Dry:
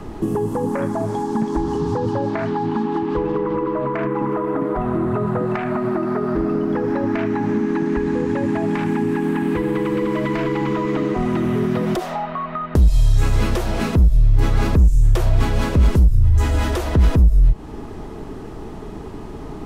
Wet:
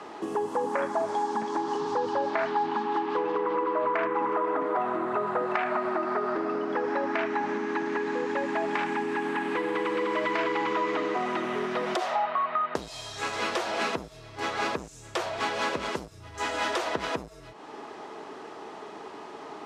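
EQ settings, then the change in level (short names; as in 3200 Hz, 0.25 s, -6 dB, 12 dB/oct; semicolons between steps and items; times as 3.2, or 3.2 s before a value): BPF 600–6300 Hz; 0.0 dB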